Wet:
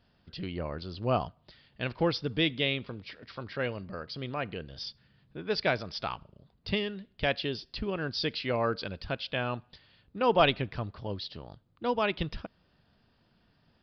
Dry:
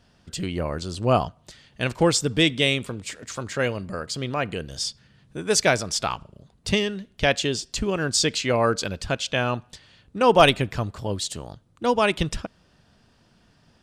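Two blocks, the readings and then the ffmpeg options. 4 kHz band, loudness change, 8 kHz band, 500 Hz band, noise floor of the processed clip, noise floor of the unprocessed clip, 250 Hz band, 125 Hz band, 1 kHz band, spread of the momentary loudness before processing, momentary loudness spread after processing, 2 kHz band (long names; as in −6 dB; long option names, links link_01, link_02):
−8.5 dB, −8.5 dB, below −30 dB, −8.0 dB, −69 dBFS, −61 dBFS, −8.0 dB, −8.0 dB, −8.0 dB, 15 LU, 16 LU, −8.0 dB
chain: -af "aresample=11025,aresample=44100,volume=-8dB"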